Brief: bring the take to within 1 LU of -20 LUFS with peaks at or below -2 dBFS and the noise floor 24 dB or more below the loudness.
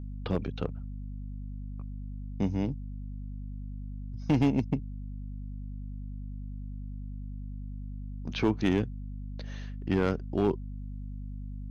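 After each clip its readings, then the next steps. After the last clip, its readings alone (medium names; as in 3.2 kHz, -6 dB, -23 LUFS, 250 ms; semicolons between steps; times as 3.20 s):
clipped samples 0.4%; clipping level -17.5 dBFS; hum 50 Hz; highest harmonic 250 Hz; hum level -36 dBFS; loudness -34.0 LUFS; peak level -17.5 dBFS; loudness target -20.0 LUFS
-> clip repair -17.5 dBFS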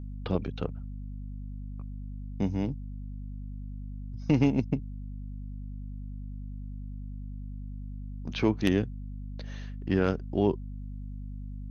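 clipped samples 0.0%; hum 50 Hz; highest harmonic 250 Hz; hum level -36 dBFS
-> hum notches 50/100/150/200/250 Hz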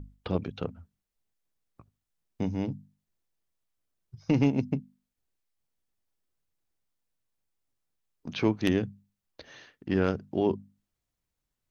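hum not found; loudness -30.0 LUFS; peak level -9.5 dBFS; loudness target -20.0 LUFS
-> trim +10 dB; peak limiter -2 dBFS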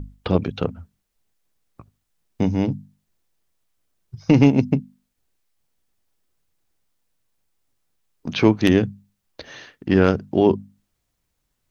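loudness -20.0 LUFS; peak level -2.0 dBFS; noise floor -75 dBFS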